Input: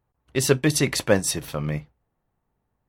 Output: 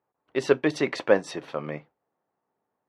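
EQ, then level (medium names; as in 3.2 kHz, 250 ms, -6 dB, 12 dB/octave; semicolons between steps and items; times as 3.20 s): band-pass 350–4200 Hz; treble shelf 2.4 kHz -11.5 dB; +2.0 dB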